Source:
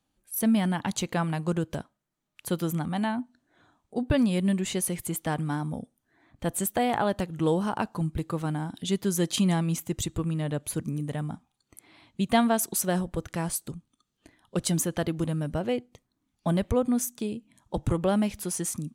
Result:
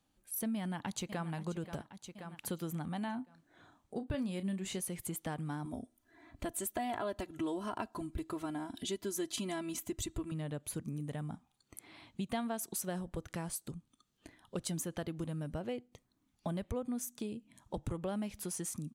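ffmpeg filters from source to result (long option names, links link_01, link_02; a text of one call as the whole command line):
ffmpeg -i in.wav -filter_complex "[0:a]asplit=2[link_01][link_02];[link_02]afade=type=in:start_time=0.56:duration=0.01,afade=type=out:start_time=1.28:duration=0.01,aecho=0:1:530|1060|1590|2120:0.223872|0.100742|0.0453341|0.0204003[link_03];[link_01][link_03]amix=inputs=2:normalize=0,asettb=1/sr,asplit=3[link_04][link_05][link_06];[link_04]atrim=end=3.054[link_07];[link_05]atrim=start=3.05:end=4.8,asetpts=PTS-STARTPTS,afade=type=in:duration=0.004:curve=qsin,afade=type=out:start_time=1.746:duration=0.004:curve=qsin,asplit=2[link_08][link_09];[link_09]adelay=31,volume=-11.5dB[link_10];[link_08][link_10]amix=inputs=2:normalize=0,atrim=end_sample=77175[link_11];[link_06]atrim=start=4.796[link_12];[link_07][link_11]acrossfade=duration=0.004:curve1=hsin:curve2=qsin[link_13];[link_13][link_12]acrossfade=duration=0.004:curve1=qsin:curve2=hsin,asettb=1/sr,asplit=3[link_14][link_15][link_16];[link_14]atrim=end=5.654[link_17];[link_15]atrim=start=5.65:end=10.32,asetpts=PTS-STARTPTS,afade=type=in:duration=0.004:curve=qsin,afade=type=out:start_time=4.666:duration=0.004:curve=qsin,aecho=1:1:3:0.85,atrim=end_sample=205947[link_18];[link_16]atrim=start=10.316[link_19];[link_17][link_18]acrossfade=duration=0.004:curve1=hsin:curve2=qsin[link_20];[link_20][link_19]acrossfade=duration=0.004:curve1=qsin:curve2=hsin,acompressor=threshold=-41dB:ratio=2.5" out.wav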